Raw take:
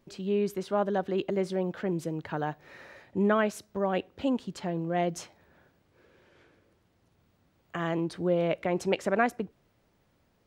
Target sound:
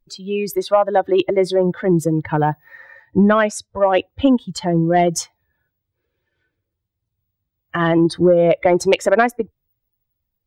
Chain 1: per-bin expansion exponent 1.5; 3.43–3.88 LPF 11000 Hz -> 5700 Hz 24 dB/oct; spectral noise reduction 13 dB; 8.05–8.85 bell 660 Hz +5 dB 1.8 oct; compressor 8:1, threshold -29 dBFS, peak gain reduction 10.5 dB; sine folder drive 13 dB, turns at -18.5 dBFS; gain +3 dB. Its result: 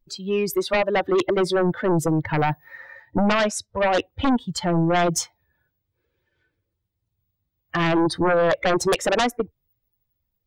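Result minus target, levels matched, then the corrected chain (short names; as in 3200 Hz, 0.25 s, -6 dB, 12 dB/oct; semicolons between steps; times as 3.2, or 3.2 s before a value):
sine folder: distortion +24 dB
per-bin expansion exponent 1.5; 3.43–3.88 LPF 11000 Hz -> 5700 Hz 24 dB/oct; spectral noise reduction 13 dB; 8.05–8.85 bell 660 Hz +5 dB 1.8 oct; compressor 8:1, threshold -29 dBFS, peak gain reduction 10.5 dB; sine folder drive 13 dB, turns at -6.5 dBFS; gain +3 dB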